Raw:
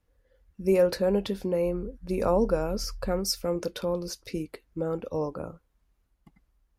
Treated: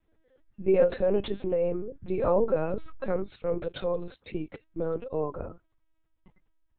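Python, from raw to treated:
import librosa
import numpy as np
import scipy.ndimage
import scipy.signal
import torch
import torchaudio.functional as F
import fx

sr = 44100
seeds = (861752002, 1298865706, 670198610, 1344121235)

y = fx.highpass(x, sr, hz=120.0, slope=12, at=(3.3, 4.39), fade=0.02)
y = fx.lpc_vocoder(y, sr, seeds[0], excitation='pitch_kept', order=10)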